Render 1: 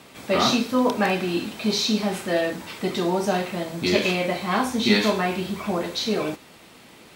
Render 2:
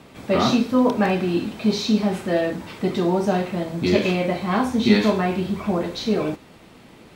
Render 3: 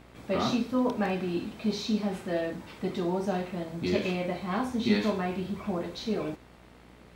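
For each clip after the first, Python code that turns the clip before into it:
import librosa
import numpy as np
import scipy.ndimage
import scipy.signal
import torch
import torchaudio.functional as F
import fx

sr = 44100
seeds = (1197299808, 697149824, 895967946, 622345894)

y1 = fx.tilt_eq(x, sr, slope=-2.0)
y2 = fx.dmg_buzz(y1, sr, base_hz=60.0, harmonics=38, level_db=-47.0, tilt_db=-4, odd_only=False)
y2 = y2 * 10.0 ** (-9.0 / 20.0)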